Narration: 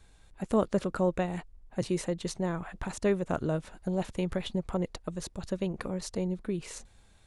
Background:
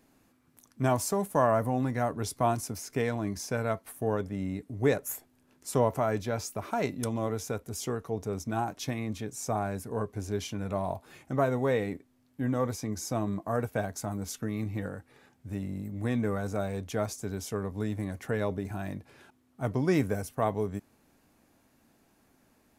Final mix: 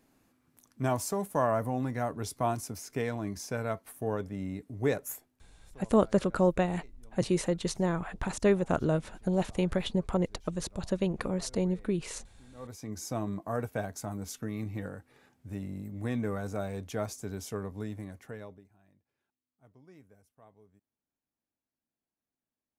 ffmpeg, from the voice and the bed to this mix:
ffmpeg -i stem1.wav -i stem2.wav -filter_complex "[0:a]adelay=5400,volume=2.5dB[link_01];[1:a]volume=21dB,afade=type=out:start_time=5.1:duration=0.4:silence=0.0630957,afade=type=in:start_time=12.53:duration=0.5:silence=0.0630957,afade=type=out:start_time=17.55:duration=1.14:silence=0.0446684[link_02];[link_01][link_02]amix=inputs=2:normalize=0" out.wav

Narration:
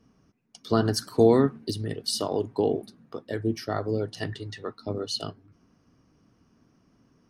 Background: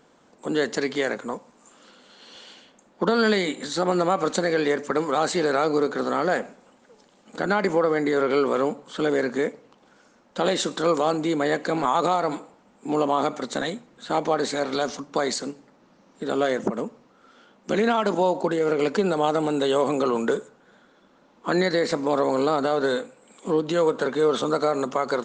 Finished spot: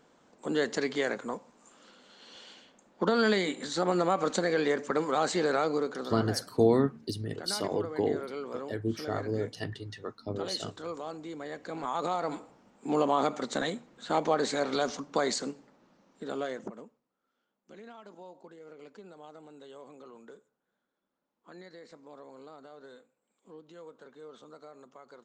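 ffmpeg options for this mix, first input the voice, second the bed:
ffmpeg -i stem1.wav -i stem2.wav -filter_complex "[0:a]adelay=5400,volume=-4.5dB[link_01];[1:a]volume=8dB,afade=type=out:start_time=5.52:duration=0.74:silence=0.251189,afade=type=in:start_time=11.55:duration=1.34:silence=0.223872,afade=type=out:start_time=15.45:duration=1.56:silence=0.0668344[link_02];[link_01][link_02]amix=inputs=2:normalize=0" out.wav

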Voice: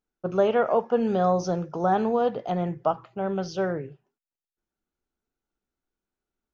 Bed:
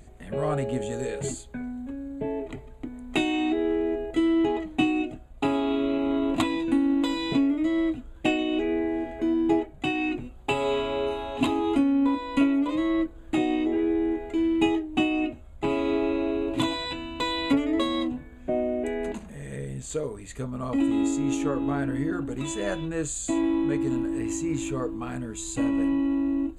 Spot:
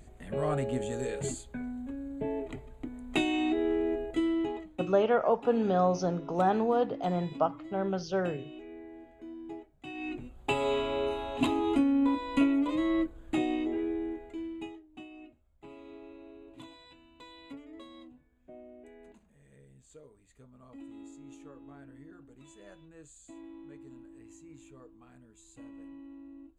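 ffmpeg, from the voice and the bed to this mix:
ffmpeg -i stem1.wav -i stem2.wav -filter_complex "[0:a]adelay=4550,volume=-3.5dB[link_01];[1:a]volume=13dB,afade=type=out:start_time=3.96:duration=0.94:silence=0.149624,afade=type=in:start_time=9.82:duration=0.64:silence=0.149624,afade=type=out:start_time=13.14:duration=1.63:silence=0.1[link_02];[link_01][link_02]amix=inputs=2:normalize=0" out.wav

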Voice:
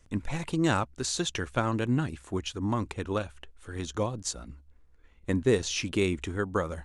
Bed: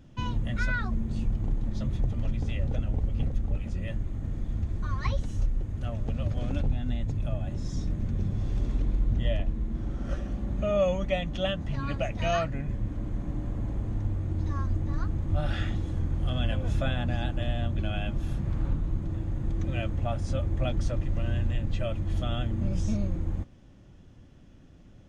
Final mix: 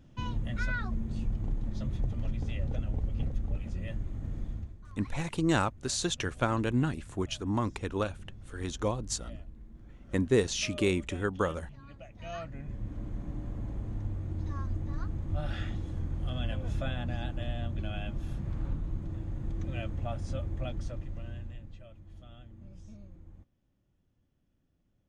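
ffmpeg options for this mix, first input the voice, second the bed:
ffmpeg -i stem1.wav -i stem2.wav -filter_complex "[0:a]adelay=4850,volume=-1dB[link_01];[1:a]volume=9.5dB,afade=type=out:start_time=4.44:duration=0.32:silence=0.177828,afade=type=in:start_time=12.12:duration=0.86:silence=0.211349,afade=type=out:start_time=20.27:duration=1.57:silence=0.158489[link_02];[link_01][link_02]amix=inputs=2:normalize=0" out.wav

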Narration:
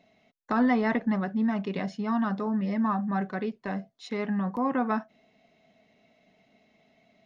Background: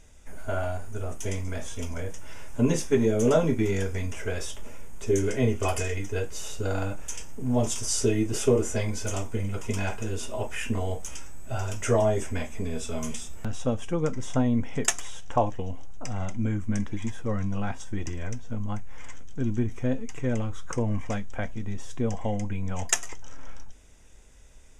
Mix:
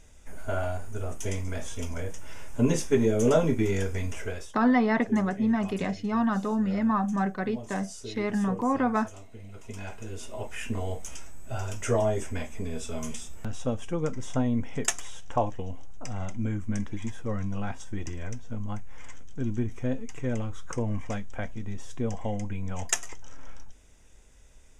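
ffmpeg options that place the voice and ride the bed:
ffmpeg -i stem1.wav -i stem2.wav -filter_complex "[0:a]adelay=4050,volume=1.5dB[link_01];[1:a]volume=13.5dB,afade=type=out:start_time=4.17:duration=0.36:silence=0.158489,afade=type=in:start_time=9.39:duration=1.5:silence=0.199526[link_02];[link_01][link_02]amix=inputs=2:normalize=0" out.wav

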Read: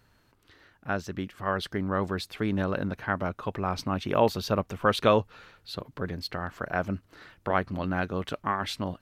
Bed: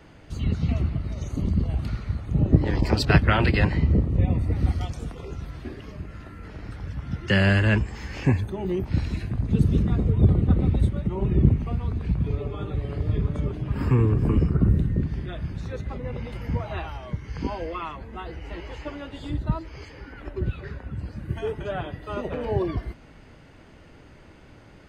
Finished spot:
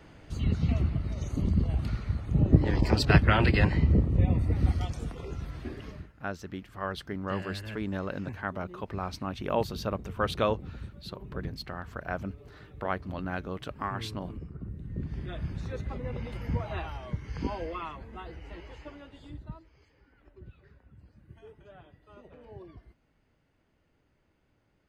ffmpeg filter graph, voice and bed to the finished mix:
ffmpeg -i stem1.wav -i stem2.wav -filter_complex "[0:a]adelay=5350,volume=-5.5dB[link_01];[1:a]volume=14.5dB,afade=type=out:start_time=5.88:duration=0.24:silence=0.125893,afade=type=in:start_time=14.8:duration=0.56:silence=0.141254,afade=type=out:start_time=17.45:duration=2.3:silence=0.11885[link_02];[link_01][link_02]amix=inputs=2:normalize=0" out.wav

